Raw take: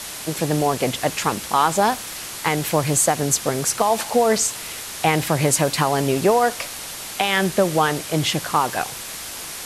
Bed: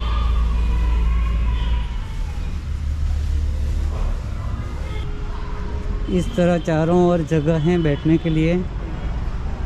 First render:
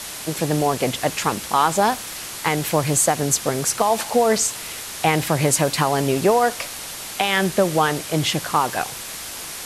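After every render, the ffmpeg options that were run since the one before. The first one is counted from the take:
-af anull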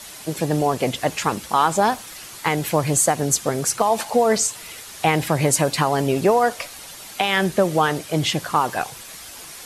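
-af "afftdn=nr=8:nf=-33"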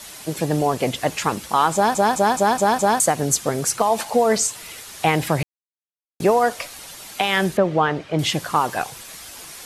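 -filter_complex "[0:a]asettb=1/sr,asplit=3[a][b][c];[a]atrim=end=7.574[d];[b]atrim=start=7.57:end=8.19,asetpts=PTS-STARTPTS,afade=t=in:d=0.004:c=qsin,afade=t=out:st=0.616:d=0.004:c=qsin,lowpass=2.8k[e];[c]atrim=start=8.186[f];[d][e]acrossfade=d=0.004:c1=hsin:c2=qsin[g];[g][f]acrossfade=d=0.004:c1=qsin:c2=hsin,asplit=9[h][i][j][k][l][m][n][o][p];[h]atrim=end=1.952[q];[i]atrim=start=1.738:end=1.952[r];[j]atrim=start=1.738:end=1.952[s];[k]atrim=start=1.738:end=1.952[t];[l]atrim=start=1.738:end=1.952[u];[m]atrim=start=1.738:end=1.952[v];[n]atrim=start=2.998:end=5.43,asetpts=PTS-STARTPTS,afade=t=out:st=2.428:d=0.004:c=hsin[w];[o]atrim=start=5.43:end=6.2,asetpts=PTS-STARTPTS,volume=0[x];[p]atrim=start=6.2,asetpts=PTS-STARTPTS,afade=t=in:d=0.004:c=hsin[y];[q][r]acrossfade=d=0.004:c1=hsin:c2=hsin[z];[z][s]acrossfade=d=0.004:c1=hsin:c2=hsin[aa];[aa][t]acrossfade=d=0.004:c1=hsin:c2=hsin[ab];[ab][u]acrossfade=d=0.004:c1=hsin:c2=hsin[ac];[ac][v]acrossfade=d=0.004:c1=hsin:c2=hsin[ad];[w][x][y]concat=n=3:v=0:a=1[ae];[ad][ae]acrossfade=d=0.004:c1=hsin:c2=hsin"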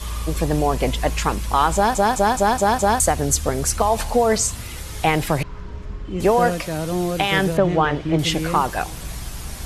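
-filter_complex "[1:a]volume=-7.5dB[a];[0:a][a]amix=inputs=2:normalize=0"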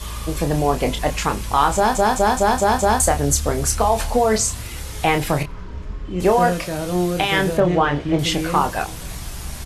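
-filter_complex "[0:a]asplit=2[a][b];[b]adelay=28,volume=-7dB[c];[a][c]amix=inputs=2:normalize=0,asplit=2[d][e];[e]adelay=93.29,volume=-27dB,highshelf=f=4k:g=-2.1[f];[d][f]amix=inputs=2:normalize=0"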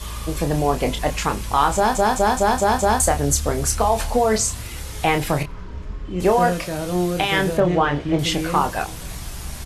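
-af "volume=-1dB"

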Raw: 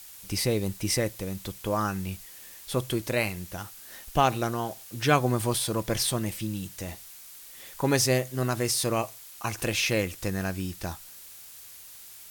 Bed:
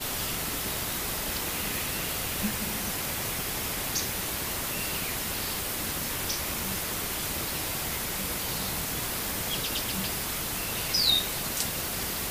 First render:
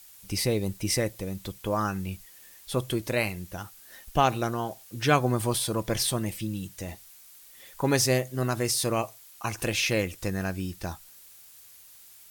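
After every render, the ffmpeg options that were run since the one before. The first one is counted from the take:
-af "afftdn=nr=6:nf=-47"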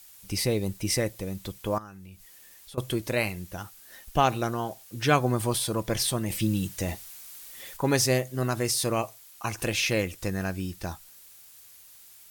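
-filter_complex "[0:a]asettb=1/sr,asplit=3[a][b][c];[a]atrim=end=1.784[d];[b]atrim=start=1.78:end=2.78,asetpts=PTS-STARTPTS,afade=t=in:d=0.004:c=qsin,afade=t=out:st=0.996:d=0.004:c=qsin,acompressor=threshold=-47dB:ratio=3:attack=3.2:release=140:knee=1:detection=peak[e];[c]atrim=start=2.776[f];[d][e]acrossfade=d=0.004:c1=hsin:c2=qsin[g];[g][f]acrossfade=d=0.004:c1=qsin:c2=hsin,asettb=1/sr,asplit=3[h][i][j];[h]atrim=end=6.304[k];[i]atrim=start=6.3:end=7.77,asetpts=PTS-STARTPTS,afade=t=in:d=0.004:c=qsin,afade=t=out:st=1.466:d=0.004:c=qsin,acontrast=65[l];[j]atrim=start=7.766[m];[k][l]acrossfade=d=0.004:c1=hsin:c2=qsin[n];[n][m]acrossfade=d=0.004:c1=qsin:c2=hsin"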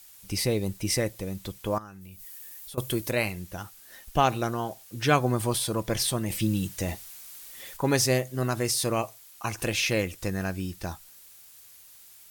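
-filter_complex "[0:a]asettb=1/sr,asplit=3[a][b][c];[a]atrim=end=2.014[d];[b]atrim=start=2.01:end=3.11,asetpts=PTS-STARTPTS,afade=t=in:d=0.004:c=qsin,afade=t=out:st=1.096:d=0.004:c=qsin,highshelf=f=10k:g=11.5[e];[c]atrim=start=3.106[f];[d][e]acrossfade=d=0.004:c1=hsin:c2=qsin[g];[g][f]acrossfade=d=0.004:c1=qsin:c2=hsin"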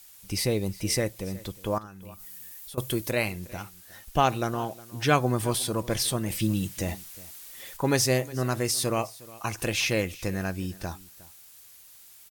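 -af "aecho=1:1:361:0.0944"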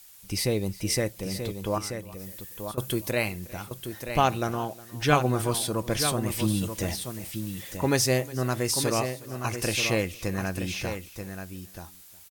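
-af "aecho=1:1:933:0.398"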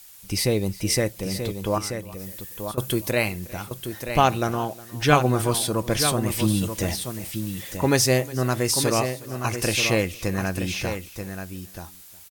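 -af "volume=4dB"

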